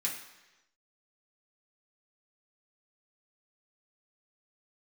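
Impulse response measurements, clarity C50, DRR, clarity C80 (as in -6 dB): 6.0 dB, -4.0 dB, 9.0 dB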